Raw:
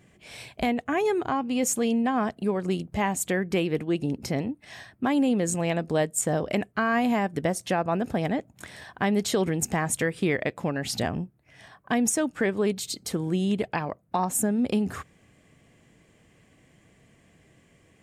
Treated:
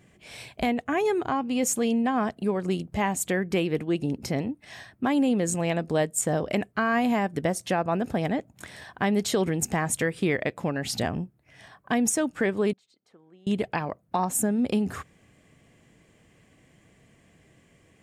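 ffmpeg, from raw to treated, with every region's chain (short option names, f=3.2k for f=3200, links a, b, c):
-filter_complex "[0:a]asettb=1/sr,asplit=3[a][b][c];[a]atrim=end=12.734[d];[b]atrim=start=12.73:end=13.47,asetpts=PTS-STARTPTS,afade=t=in:d=0.004:c=qsin,afade=t=out:st=0.736:d=0.004:c=qsin,lowpass=1k,aderivative[e];[c]atrim=start=13.466[f];[d][e]acrossfade=d=0.004:c1=hsin:c2=qsin[g];[g][f]acrossfade=d=0.004:c1=qsin:c2=hsin"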